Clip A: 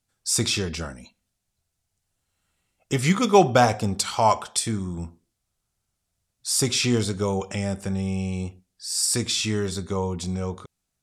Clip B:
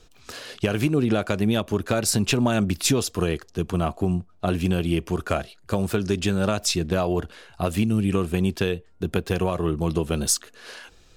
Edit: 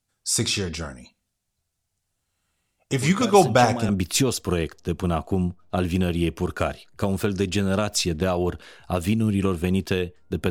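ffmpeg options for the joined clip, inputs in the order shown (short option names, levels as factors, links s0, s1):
-filter_complex "[1:a]asplit=2[s0][s1];[0:a]apad=whole_dur=10.5,atrim=end=10.5,atrim=end=3.892[s2];[s1]atrim=start=2.588:end=9.2[s3];[s0]atrim=start=1.61:end=2.59,asetpts=PTS-STARTPTS,volume=0.376,afade=t=in:d=0.004:c=hsin,afade=t=out:st=0.976:d=0.004:c=hsin,adelay=2910[s4];[s2][s3]acrossfade=d=0.004:c1=hsin:c2=hsin[s5];[s5][s4]amix=inputs=2:normalize=0"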